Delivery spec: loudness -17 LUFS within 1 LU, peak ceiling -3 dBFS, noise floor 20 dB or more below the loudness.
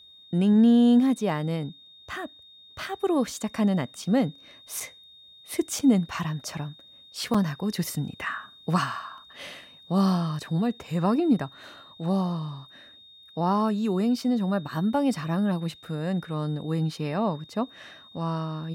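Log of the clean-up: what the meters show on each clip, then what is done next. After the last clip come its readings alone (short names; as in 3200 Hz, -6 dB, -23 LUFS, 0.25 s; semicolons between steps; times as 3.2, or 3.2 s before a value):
dropouts 3; longest dropout 4.8 ms; steady tone 3700 Hz; tone level -49 dBFS; loudness -26.5 LUFS; peak -10.5 dBFS; loudness target -17.0 LUFS
-> interpolate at 4.8/5.79/7.34, 4.8 ms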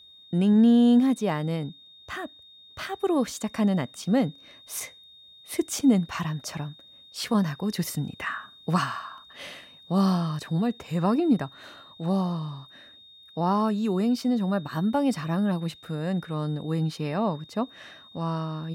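dropouts 0; steady tone 3700 Hz; tone level -49 dBFS
-> notch 3700 Hz, Q 30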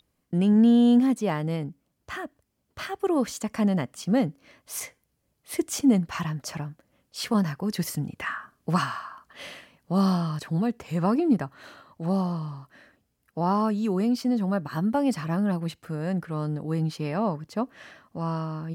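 steady tone none; loudness -26.5 LUFS; peak -10.5 dBFS; loudness target -17.0 LUFS
-> gain +9.5 dB; limiter -3 dBFS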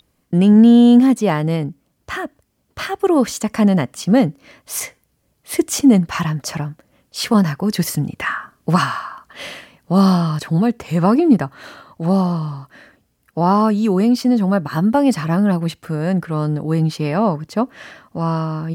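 loudness -17.0 LUFS; peak -3.0 dBFS; noise floor -65 dBFS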